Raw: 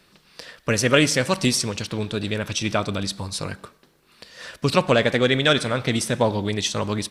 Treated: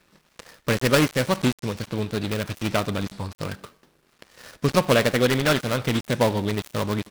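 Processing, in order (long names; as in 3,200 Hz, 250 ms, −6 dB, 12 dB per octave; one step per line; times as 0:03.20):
gap after every zero crossing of 0.19 ms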